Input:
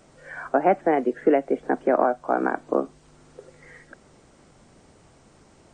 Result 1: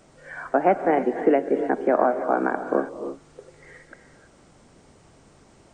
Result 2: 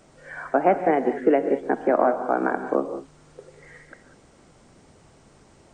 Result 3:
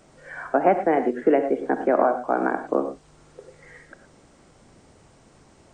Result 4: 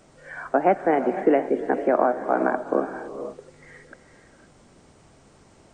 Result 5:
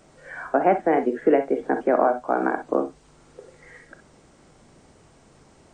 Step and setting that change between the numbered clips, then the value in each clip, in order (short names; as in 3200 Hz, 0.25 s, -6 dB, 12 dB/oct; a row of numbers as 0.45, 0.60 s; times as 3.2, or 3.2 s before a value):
non-linear reverb, gate: 350, 220, 130, 540, 80 ms